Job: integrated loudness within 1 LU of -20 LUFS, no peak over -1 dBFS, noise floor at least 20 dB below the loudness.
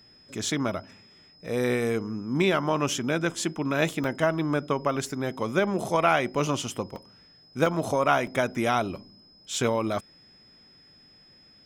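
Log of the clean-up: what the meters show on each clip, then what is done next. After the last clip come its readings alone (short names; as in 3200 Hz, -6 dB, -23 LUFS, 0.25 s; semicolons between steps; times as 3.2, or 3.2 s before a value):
dropouts 5; longest dropout 1.9 ms; steady tone 5100 Hz; tone level -54 dBFS; loudness -27.0 LUFS; peak -8.0 dBFS; loudness target -20.0 LUFS
-> interpolate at 4.04/6.96/7.66/8.27/9.54, 1.9 ms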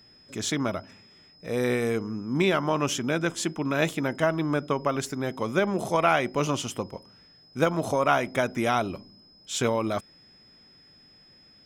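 dropouts 0; steady tone 5100 Hz; tone level -54 dBFS
-> notch 5100 Hz, Q 30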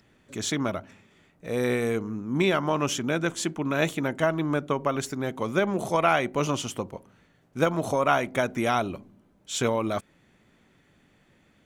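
steady tone none; loudness -27.0 LUFS; peak -8.5 dBFS; loudness target -20.0 LUFS
-> gain +7 dB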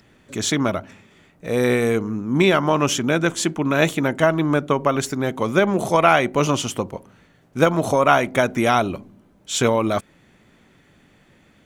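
loudness -20.0 LUFS; peak -1.5 dBFS; noise floor -56 dBFS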